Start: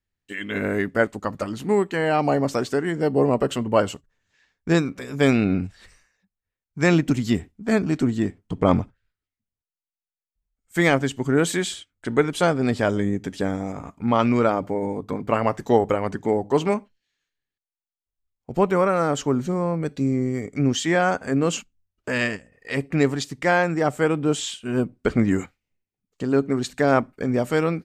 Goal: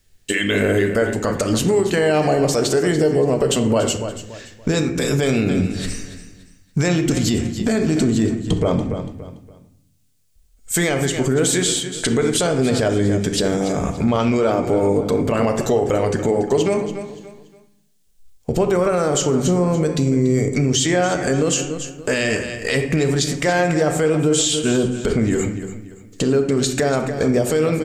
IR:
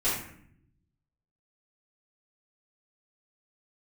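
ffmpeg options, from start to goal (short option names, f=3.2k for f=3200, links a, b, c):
-filter_complex "[0:a]equalizer=f=125:t=o:w=1:g=-4,equalizer=f=250:t=o:w=1:g=-6,equalizer=f=1k:t=o:w=1:g=-9,equalizer=f=2k:t=o:w=1:g=-5,equalizer=f=8k:t=o:w=1:g=5,acompressor=threshold=-43dB:ratio=3,aecho=1:1:286|572|858:0.211|0.0655|0.0203,asplit=2[a][b];[1:a]atrim=start_sample=2205,lowpass=7.4k[c];[b][c]afir=irnorm=-1:irlink=0,volume=-15.5dB[d];[a][d]amix=inputs=2:normalize=0,alimiter=level_in=31.5dB:limit=-1dB:release=50:level=0:latency=1,volume=-7.5dB"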